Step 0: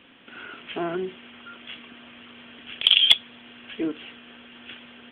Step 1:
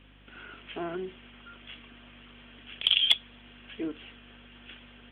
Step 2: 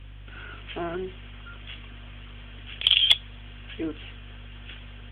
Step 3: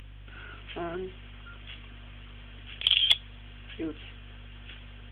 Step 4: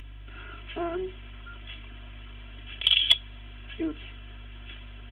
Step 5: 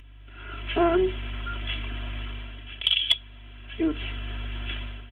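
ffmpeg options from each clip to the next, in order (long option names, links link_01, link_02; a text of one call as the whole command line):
ffmpeg -i in.wav -af "aeval=exprs='val(0)+0.00316*(sin(2*PI*50*n/s)+sin(2*PI*2*50*n/s)/2+sin(2*PI*3*50*n/s)/3+sin(2*PI*4*50*n/s)/4+sin(2*PI*5*50*n/s)/5)':channel_layout=same,volume=-6.5dB" out.wav
ffmpeg -i in.wav -af "lowshelf=frequency=140:width_type=q:width=1.5:gain=10,volume=4dB" out.wav
ffmpeg -i in.wav -af "acompressor=mode=upward:threshold=-41dB:ratio=2.5,volume=-3.5dB" out.wav
ffmpeg -i in.wav -af "aecho=1:1:3:0.71" out.wav
ffmpeg -i in.wav -af "dynaudnorm=framelen=370:gausssize=3:maxgain=16.5dB,volume=-5.5dB" out.wav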